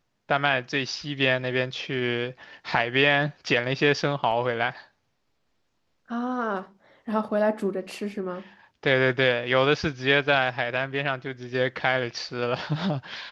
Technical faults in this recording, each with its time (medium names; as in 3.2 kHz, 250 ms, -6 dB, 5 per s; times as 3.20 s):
4.31–4.32 s: dropout 5 ms